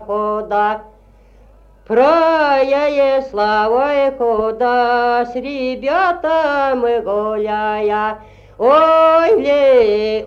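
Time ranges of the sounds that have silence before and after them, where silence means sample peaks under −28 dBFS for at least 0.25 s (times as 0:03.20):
0:01.90–0:08.17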